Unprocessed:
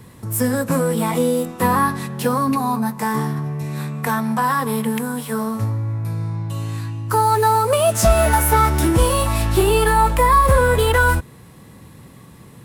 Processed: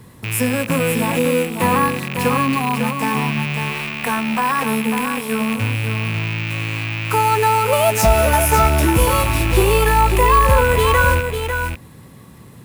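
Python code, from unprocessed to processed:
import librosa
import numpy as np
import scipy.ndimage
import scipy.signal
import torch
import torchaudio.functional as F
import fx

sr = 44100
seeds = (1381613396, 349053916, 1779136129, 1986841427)

p1 = fx.rattle_buzz(x, sr, strikes_db=-27.0, level_db=-14.0)
p2 = p1 + fx.echo_single(p1, sr, ms=548, db=-6.5, dry=0)
y = np.repeat(p2[::2], 2)[:len(p2)]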